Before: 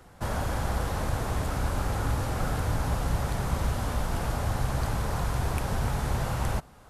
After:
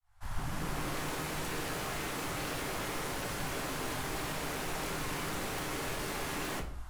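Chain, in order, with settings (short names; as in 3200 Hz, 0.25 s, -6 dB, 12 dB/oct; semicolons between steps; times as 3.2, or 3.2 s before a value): opening faded in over 1.06 s; inverse Chebyshev band-stop 170–420 Hz, stop band 50 dB; low shelf 140 Hz +9.5 dB; notches 60/120 Hz; wavefolder -34.5 dBFS; shoebox room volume 43 m³, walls mixed, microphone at 0.49 m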